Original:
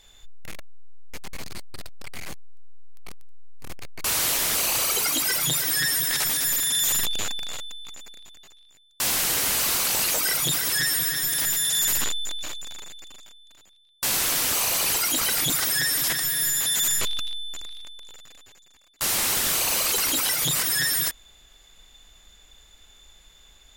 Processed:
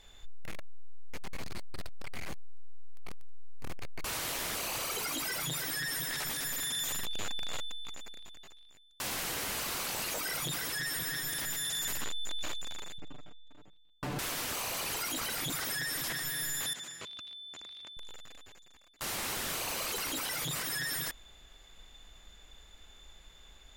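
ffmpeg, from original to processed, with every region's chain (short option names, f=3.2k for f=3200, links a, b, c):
-filter_complex "[0:a]asettb=1/sr,asplit=3[a][b][c];[a]atrim=end=12.984[d];[b]atrim=start=12.98:end=14.19,asetpts=PTS-STARTPTS,afade=t=in:d=0.004:c=qsin,afade=t=out:st=1.206:d=0.004:c=qsin,lowpass=f=1k:p=1,equalizer=f=170:t=o:w=2.5:g=9.5,aecho=1:1:6.8:0.82,atrim=end_sample=53361[e];[c]atrim=start=14.186[f];[d][e]acrossfade=d=0.004:c1=hsin:c2=qsin[g];[g][f]acrossfade=d=0.004:c1=qsin:c2=hsin,asettb=1/sr,asplit=3[h][i][j];[h]atrim=end=16.734[k];[i]atrim=start=16.73:end=17.97,asetpts=PTS-STARTPTS,afade=t=in:d=0.004:c=qsin,afade=t=out:st=1.236:d=0.004:c=qsin,acompressor=threshold=-35dB:ratio=5:attack=3.2:release=140:knee=1:detection=peak,highpass=110,lowpass=7.4k[l];[j]atrim=start=17.966[m];[k][l]acrossfade=d=0.004:c1=hsin:c2=qsin[n];[n][m]acrossfade=d=0.004:c1=qsin:c2=hsin,highshelf=f=3.8k:g=-8.5,alimiter=level_in=4dB:limit=-24dB:level=0:latency=1,volume=-4dB"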